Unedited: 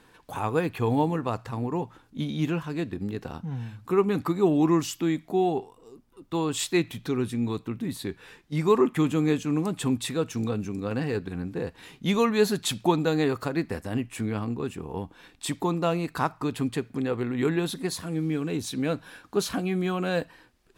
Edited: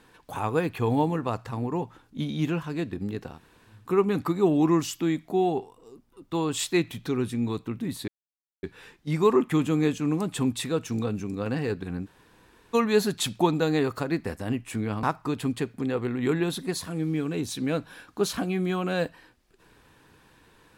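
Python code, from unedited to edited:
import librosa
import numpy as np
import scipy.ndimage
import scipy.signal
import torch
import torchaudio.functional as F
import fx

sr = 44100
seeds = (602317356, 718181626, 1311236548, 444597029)

y = fx.edit(x, sr, fx.room_tone_fill(start_s=3.33, length_s=0.45, crossfade_s=0.24),
    fx.insert_silence(at_s=8.08, length_s=0.55),
    fx.room_tone_fill(start_s=11.51, length_s=0.68, crossfade_s=0.02),
    fx.cut(start_s=14.48, length_s=1.71), tone=tone)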